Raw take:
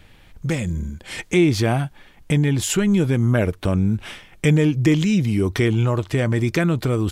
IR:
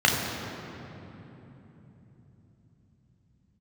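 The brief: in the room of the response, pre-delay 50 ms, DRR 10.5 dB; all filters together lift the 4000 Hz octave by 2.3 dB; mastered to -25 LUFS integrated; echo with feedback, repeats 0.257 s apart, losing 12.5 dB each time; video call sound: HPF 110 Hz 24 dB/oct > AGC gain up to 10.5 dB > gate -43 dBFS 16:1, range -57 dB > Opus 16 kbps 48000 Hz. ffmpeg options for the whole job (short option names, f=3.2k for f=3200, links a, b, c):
-filter_complex "[0:a]equalizer=f=4k:t=o:g=3,aecho=1:1:257|514|771:0.237|0.0569|0.0137,asplit=2[a][b];[1:a]atrim=start_sample=2205,adelay=50[c];[b][c]afir=irnorm=-1:irlink=0,volume=-29dB[d];[a][d]amix=inputs=2:normalize=0,highpass=f=110:w=0.5412,highpass=f=110:w=1.3066,dynaudnorm=m=10.5dB,agate=range=-57dB:threshold=-43dB:ratio=16,volume=-5dB" -ar 48000 -c:a libopus -b:a 16k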